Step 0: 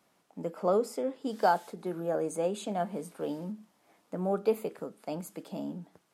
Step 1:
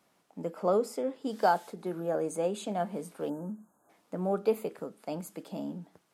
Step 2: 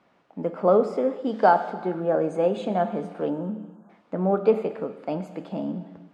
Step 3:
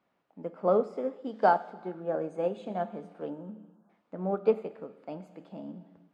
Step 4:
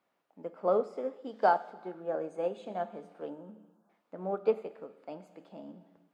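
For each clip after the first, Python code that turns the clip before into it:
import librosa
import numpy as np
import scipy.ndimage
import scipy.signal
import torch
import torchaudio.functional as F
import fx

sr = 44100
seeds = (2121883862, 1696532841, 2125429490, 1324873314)

y1 = fx.spec_erase(x, sr, start_s=3.29, length_s=0.6, low_hz=1700.0, high_hz=6300.0)
y2 = scipy.signal.sosfilt(scipy.signal.butter(2, 2700.0, 'lowpass', fs=sr, output='sos'), y1)
y2 = fx.rev_gated(y2, sr, seeds[0], gate_ms=490, shape='falling', drr_db=10.0)
y2 = y2 * librosa.db_to_amplitude(7.5)
y3 = fx.upward_expand(y2, sr, threshold_db=-30.0, expansion=1.5)
y3 = y3 * librosa.db_to_amplitude(-4.5)
y4 = fx.bass_treble(y3, sr, bass_db=-8, treble_db=3)
y4 = y4 * librosa.db_to_amplitude(-2.0)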